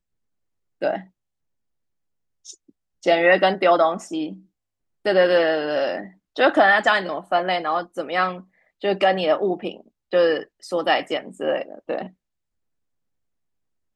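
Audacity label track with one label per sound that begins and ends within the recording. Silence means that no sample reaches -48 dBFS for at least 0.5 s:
0.810000	1.070000	sound
2.450000	4.420000	sound
5.050000	12.110000	sound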